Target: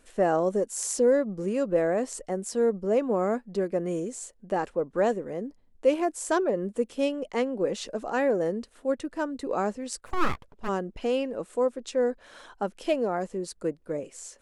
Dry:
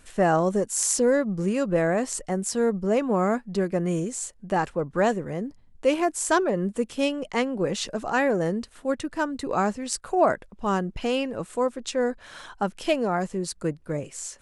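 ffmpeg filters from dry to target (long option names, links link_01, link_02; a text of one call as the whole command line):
ffmpeg -i in.wav -filter_complex "[0:a]equalizer=frequency=125:width_type=o:width=1:gain=-8,equalizer=frequency=250:width_type=o:width=1:gain=4,equalizer=frequency=500:width_type=o:width=1:gain=7,asplit=3[link_01][link_02][link_03];[link_01]afade=type=out:start_time=10.05:duration=0.02[link_04];[link_02]aeval=exprs='abs(val(0))':channel_layout=same,afade=type=in:start_time=10.05:duration=0.02,afade=type=out:start_time=10.67:duration=0.02[link_05];[link_03]afade=type=in:start_time=10.67:duration=0.02[link_06];[link_04][link_05][link_06]amix=inputs=3:normalize=0,volume=-7dB" out.wav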